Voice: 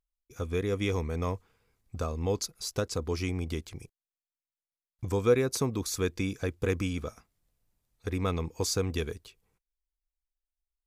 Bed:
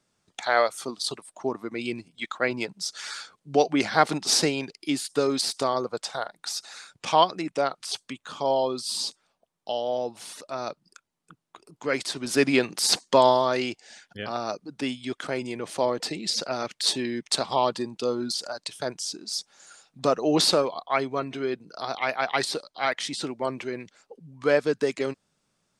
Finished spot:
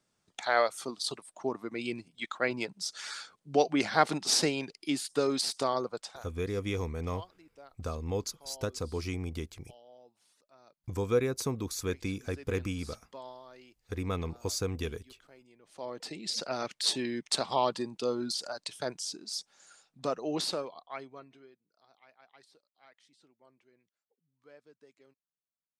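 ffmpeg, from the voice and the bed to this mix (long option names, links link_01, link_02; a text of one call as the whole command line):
ffmpeg -i stem1.wav -i stem2.wav -filter_complex "[0:a]adelay=5850,volume=-3.5dB[link_01];[1:a]volume=19dB,afade=type=out:start_time=5.84:duration=0.43:silence=0.0668344,afade=type=in:start_time=15.64:duration=0.92:silence=0.0668344,afade=type=out:start_time=18.87:duration=2.69:silence=0.0316228[link_02];[link_01][link_02]amix=inputs=2:normalize=0" out.wav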